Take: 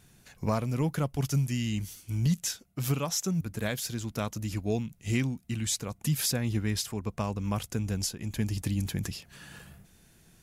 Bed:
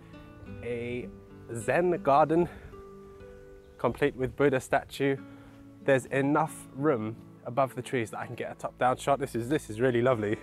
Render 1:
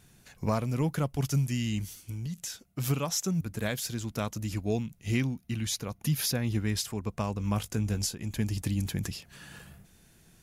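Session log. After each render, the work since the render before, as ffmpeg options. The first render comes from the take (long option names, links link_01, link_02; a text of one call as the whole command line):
ffmpeg -i in.wav -filter_complex "[0:a]asettb=1/sr,asplit=3[link_01][link_02][link_03];[link_01]atrim=end=1.994[link_04];[link_02]atrim=start=1.99:end=2.64,asetpts=PTS-STARTPTS,afade=type=in:duration=0.004:curve=qsin,afade=type=out:start_time=0.646:duration=0.004:curve=qsin,acompressor=threshold=-33dB:ratio=6:attack=3.2:release=140:knee=1:detection=peak[link_05];[link_03]atrim=start=2.636[link_06];[link_04][link_05]acrossfade=duration=0.004:curve1=hsin:curve2=qsin[link_07];[link_07][link_06]acrossfade=duration=0.004:curve1=qsin:curve2=hsin,asettb=1/sr,asplit=3[link_08][link_09][link_10];[link_08]atrim=end=4.994[link_11];[link_09]atrim=start=4.99:end=6.52,asetpts=PTS-STARTPTS,afade=type=in:duration=0.004:curve=qsin,afade=type=out:start_time=1.526:duration=0.004:curve=qsin,equalizer=frequency=7900:width=6.7:gain=-14.5[link_12];[link_10]atrim=start=6.516[link_13];[link_11][link_12]acrossfade=duration=0.004:curve1=hsin:curve2=qsin[link_14];[link_14][link_13]acrossfade=duration=0.004:curve1=qsin:curve2=hsin,asettb=1/sr,asplit=3[link_15][link_16][link_17];[link_15]atrim=end=7.384[link_18];[link_16]atrim=start=7.38:end=8.15,asetpts=PTS-STARTPTS,afade=type=in:duration=0.004:curve=qsin,afade=type=out:start_time=0.766:duration=0.004:curve=qsin,asplit=2[link_19][link_20];[link_20]adelay=19,volume=-9.5dB[link_21];[link_19][link_21]amix=inputs=2:normalize=0,atrim=end_sample=33957[link_22];[link_17]atrim=start=8.146[link_23];[link_18][link_22]acrossfade=duration=0.004:curve1=hsin:curve2=qsin[link_24];[link_24][link_23]acrossfade=duration=0.004:curve1=qsin:curve2=hsin" out.wav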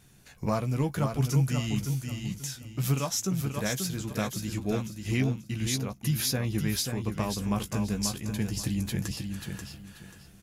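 ffmpeg -i in.wav -filter_complex "[0:a]asplit=2[link_01][link_02];[link_02]adelay=15,volume=-8dB[link_03];[link_01][link_03]amix=inputs=2:normalize=0,aecho=1:1:536|1072|1608:0.501|0.125|0.0313" out.wav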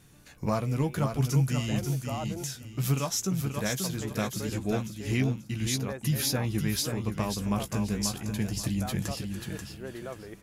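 ffmpeg -i in.wav -i bed.wav -filter_complex "[1:a]volume=-15dB[link_01];[0:a][link_01]amix=inputs=2:normalize=0" out.wav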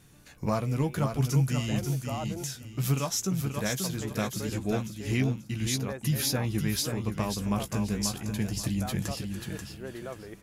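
ffmpeg -i in.wav -af anull out.wav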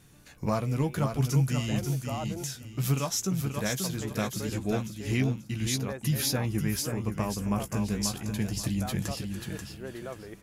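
ffmpeg -i in.wav -filter_complex "[0:a]asettb=1/sr,asplit=3[link_01][link_02][link_03];[link_01]atrim=end=6.464[link_04];[link_02]atrim=start=6.46:end=7.77,asetpts=PTS-STARTPTS,afade=type=in:duration=0.004:curve=qsin,afade=type=out:start_time=1.306:duration=0.004:curve=qsin,equalizer=frequency=3800:width_type=o:width=0.54:gain=-10[link_05];[link_03]atrim=start=7.766[link_06];[link_04][link_05]acrossfade=duration=0.004:curve1=hsin:curve2=qsin[link_07];[link_07][link_06]acrossfade=duration=0.004:curve1=qsin:curve2=hsin" out.wav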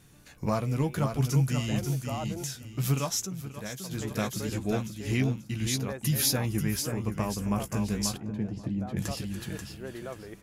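ffmpeg -i in.wav -filter_complex "[0:a]asettb=1/sr,asplit=3[link_01][link_02][link_03];[link_01]atrim=end=6.024[link_04];[link_02]atrim=start=6.02:end=6.63,asetpts=PTS-STARTPTS,afade=type=in:duration=0.004:curve=qsin,afade=type=out:start_time=0.606:duration=0.004:curve=qsin,highshelf=frequency=5400:gain=5.5[link_05];[link_03]atrim=start=6.626[link_06];[link_04][link_05]acrossfade=duration=0.004:curve1=hsin:curve2=qsin[link_07];[link_07][link_06]acrossfade=duration=0.004:curve1=qsin:curve2=hsin,asettb=1/sr,asplit=3[link_08][link_09][link_10];[link_08]atrim=end=8.174[link_11];[link_09]atrim=start=8.17:end=8.97,asetpts=PTS-STARTPTS,afade=type=in:duration=0.004:curve=qsin,afade=type=out:start_time=0.796:duration=0.004:curve=qsin,bandpass=frequency=290:width_type=q:width=0.53[link_12];[link_10]atrim=start=8.966[link_13];[link_11][link_12]acrossfade=duration=0.004:curve1=hsin:curve2=qsin[link_14];[link_14][link_13]acrossfade=duration=0.004:curve1=qsin:curve2=hsin,asplit=3[link_15][link_16][link_17];[link_15]atrim=end=3.262[link_18];[link_16]atrim=start=3.258:end=3.912,asetpts=PTS-STARTPTS,volume=-8dB[link_19];[link_17]atrim=start=3.908[link_20];[link_18][link_19]acrossfade=duration=0.004:curve1=hsin:curve2=hsin[link_21];[link_21][link_20]acrossfade=duration=0.004:curve1=hsin:curve2=hsin" out.wav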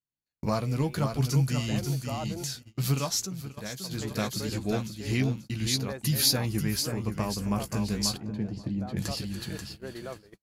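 ffmpeg -i in.wav -af "equalizer=frequency=4400:width_type=o:width=0.27:gain=11,agate=range=-44dB:threshold=-40dB:ratio=16:detection=peak" out.wav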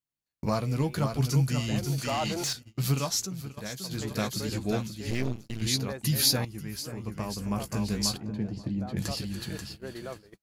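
ffmpeg -i in.wav -filter_complex "[0:a]asettb=1/sr,asplit=3[link_01][link_02][link_03];[link_01]atrim=end=1.984[link_04];[link_02]atrim=start=1.98:end=2.53,asetpts=PTS-STARTPTS,afade=type=in:duration=0.004:curve=qsin,afade=type=out:start_time=0.546:duration=0.004:curve=qsin,asplit=2[link_05][link_06];[link_06]highpass=frequency=720:poles=1,volume=18dB,asoftclip=type=tanh:threshold=-20dB[link_07];[link_05][link_07]amix=inputs=2:normalize=0,lowpass=frequency=5100:poles=1,volume=-6dB[link_08];[link_03]atrim=start=2.526[link_09];[link_04][link_08]acrossfade=duration=0.004:curve1=hsin:curve2=qsin[link_10];[link_10][link_09]acrossfade=duration=0.004:curve1=qsin:curve2=hsin,asettb=1/sr,asplit=3[link_11][link_12][link_13];[link_11]atrim=end=5.104[link_14];[link_12]atrim=start=5.1:end=5.62,asetpts=PTS-STARTPTS,afade=type=in:duration=0.004:curve=qsin,afade=type=out:start_time=0.516:duration=0.004:curve=qsin,aeval=exprs='max(val(0),0)':channel_layout=same[link_15];[link_13]atrim=start=5.616[link_16];[link_14][link_15]acrossfade=duration=0.004:curve1=hsin:curve2=qsin[link_17];[link_17][link_16]acrossfade=duration=0.004:curve1=qsin:curve2=hsin,asplit=2[link_18][link_19];[link_18]atrim=end=6.45,asetpts=PTS-STARTPTS,afade=type=out:start_time=6.446:duration=0.004:curve=hsin:silence=0.237137[link_20];[link_19]atrim=start=6.45,asetpts=PTS-STARTPTS,afade=type=in:duration=1.48:silence=0.237137[link_21];[link_20][link_21]concat=n=2:v=0:a=1" out.wav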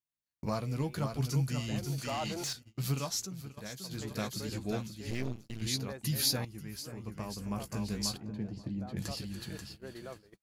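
ffmpeg -i in.wav -af "volume=-6dB" out.wav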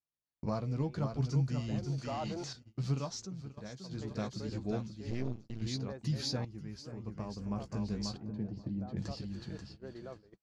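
ffmpeg -i in.wav -af "lowpass=frequency=5700:width=0.5412,lowpass=frequency=5700:width=1.3066,equalizer=frequency=2800:width_type=o:width=2.2:gain=-9" out.wav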